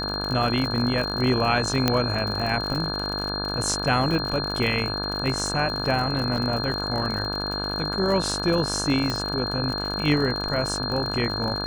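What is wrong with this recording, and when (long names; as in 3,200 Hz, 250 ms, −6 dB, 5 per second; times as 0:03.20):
mains buzz 50 Hz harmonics 34 −31 dBFS
surface crackle 57 per second −28 dBFS
whistle 4,200 Hz −29 dBFS
0:01.88: click −5 dBFS
0:06.37: drop-out 3.6 ms
0:09.10: click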